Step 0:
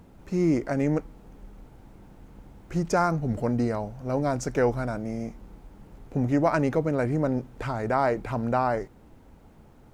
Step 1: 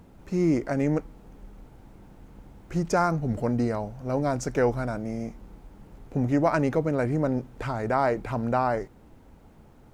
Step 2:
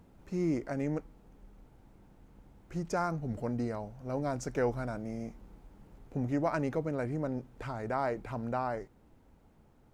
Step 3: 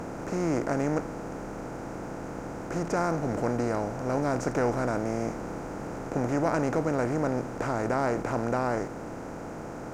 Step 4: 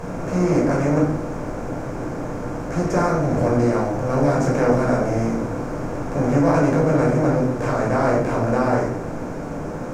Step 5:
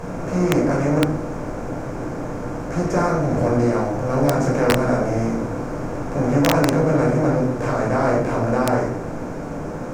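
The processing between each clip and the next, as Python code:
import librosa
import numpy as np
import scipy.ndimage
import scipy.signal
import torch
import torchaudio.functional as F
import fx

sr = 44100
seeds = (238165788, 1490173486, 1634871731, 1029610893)

y1 = x
y2 = fx.rider(y1, sr, range_db=3, speed_s=2.0)
y2 = y2 * 10.0 ** (-8.5 / 20.0)
y3 = fx.bin_compress(y2, sr, power=0.4)
y4 = fx.room_shoebox(y3, sr, seeds[0], volume_m3=810.0, walls='furnished', distance_m=5.5)
y5 = (np.mod(10.0 ** (7.0 / 20.0) * y4 + 1.0, 2.0) - 1.0) / 10.0 ** (7.0 / 20.0)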